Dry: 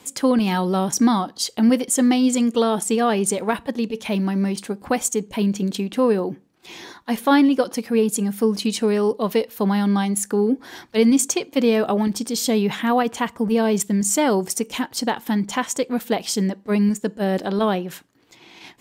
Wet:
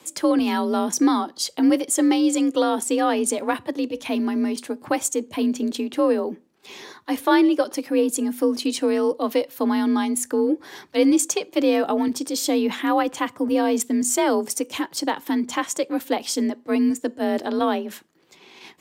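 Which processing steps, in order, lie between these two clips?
frequency shift +45 Hz; trim -1.5 dB

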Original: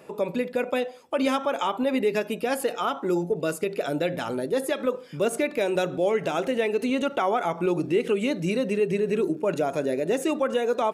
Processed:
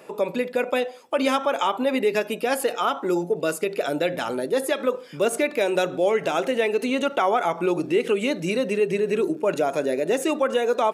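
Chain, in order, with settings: high-pass 310 Hz 6 dB/octave; trim +4 dB

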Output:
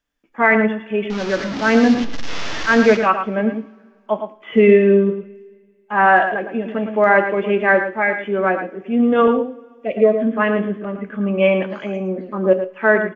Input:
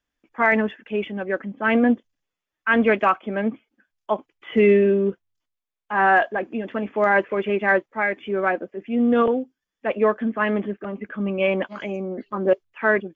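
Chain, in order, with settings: 1.10–2.97 s: one-bit delta coder 32 kbps, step -23 dBFS; 9.72–10.21 s: time-frequency box 750–1900 Hz -16 dB; echo from a far wall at 19 m, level -9 dB; harmonic-percussive split percussive -6 dB; two-slope reverb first 0.36 s, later 1.9 s, from -18 dB, DRR 10 dB; trim +4.5 dB

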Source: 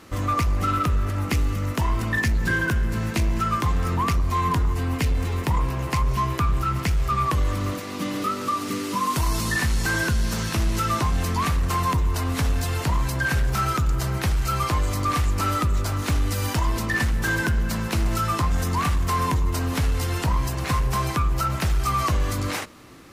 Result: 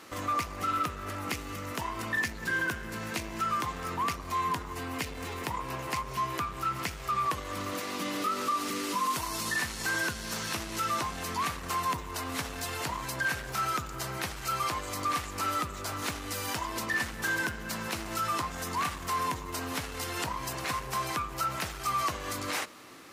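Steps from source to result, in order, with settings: peak limiter -21 dBFS, peak gain reduction 6.5 dB; high-pass 490 Hz 6 dB/octave

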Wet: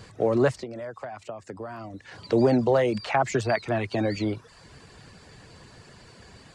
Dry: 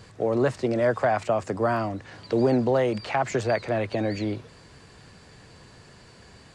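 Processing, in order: reverb removal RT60 0.53 s; 0.56–2.22 s: compression 10:1, threshold -36 dBFS, peak gain reduction 17.5 dB; 3.26–3.98 s: peaking EQ 530 Hz -12.5 dB 0.22 oct; trim +2 dB

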